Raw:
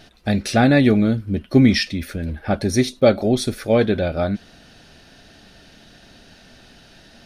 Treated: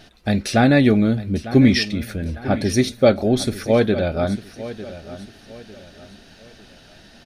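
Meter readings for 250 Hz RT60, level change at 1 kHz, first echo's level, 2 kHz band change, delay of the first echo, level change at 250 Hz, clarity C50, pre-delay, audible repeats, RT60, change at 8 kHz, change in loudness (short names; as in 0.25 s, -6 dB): none, 0.0 dB, -15.0 dB, 0.0 dB, 0.901 s, 0.0 dB, none, none, 3, none, 0.0 dB, 0.0 dB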